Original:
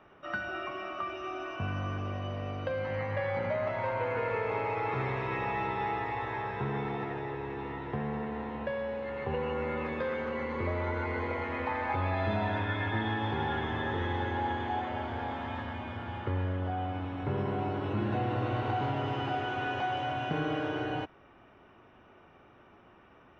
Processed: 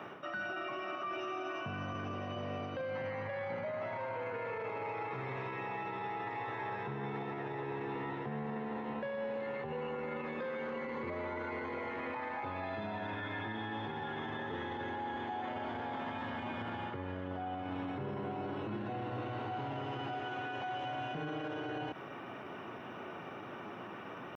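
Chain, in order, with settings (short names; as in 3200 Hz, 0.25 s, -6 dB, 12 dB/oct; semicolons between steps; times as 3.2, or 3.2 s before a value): HPF 120 Hz 24 dB/oct; reverse; compressor 5:1, threshold -45 dBFS, peak gain reduction 15.5 dB; reverse; limiter -44 dBFS, peak gain reduction 10.5 dB; tempo 0.96×; gain +12.5 dB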